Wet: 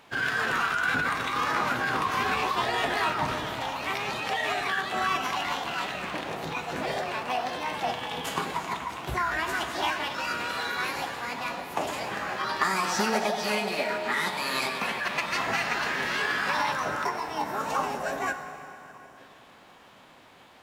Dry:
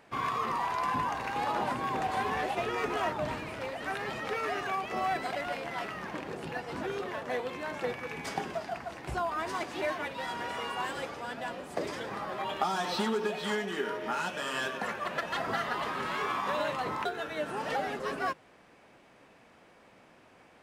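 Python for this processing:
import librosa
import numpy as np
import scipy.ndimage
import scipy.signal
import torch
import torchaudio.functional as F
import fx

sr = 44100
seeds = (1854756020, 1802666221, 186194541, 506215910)

y = fx.spec_box(x, sr, start_s=16.72, length_s=2.45, low_hz=1100.0, high_hz=3600.0, gain_db=-8)
y = fx.rev_plate(y, sr, seeds[0], rt60_s=3.3, hf_ratio=0.75, predelay_ms=0, drr_db=7.0)
y = fx.formant_shift(y, sr, semitones=6)
y = F.gain(torch.from_numpy(y), 4.0).numpy()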